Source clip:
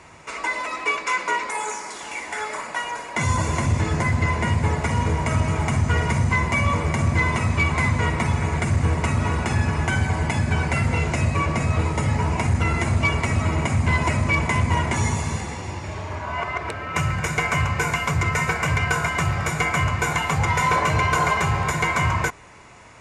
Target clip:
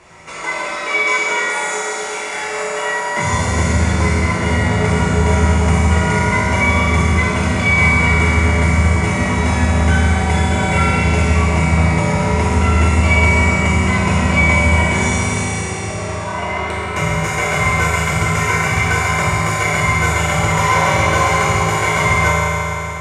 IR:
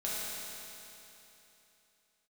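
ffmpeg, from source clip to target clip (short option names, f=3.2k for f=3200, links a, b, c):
-filter_complex "[1:a]atrim=start_sample=2205,asetrate=40131,aresample=44100[a];[0:a][a]afir=irnorm=-1:irlink=0,volume=1.5dB"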